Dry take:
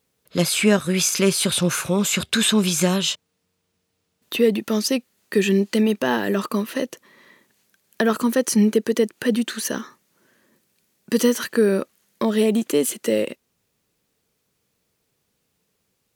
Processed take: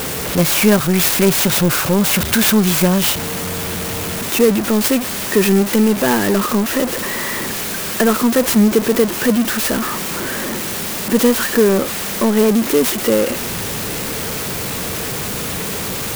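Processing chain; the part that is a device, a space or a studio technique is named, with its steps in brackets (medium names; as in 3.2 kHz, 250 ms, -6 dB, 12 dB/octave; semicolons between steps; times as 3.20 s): early CD player with a faulty converter (jump at every zero crossing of -18.5 dBFS; sampling jitter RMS 0.061 ms); trim +2.5 dB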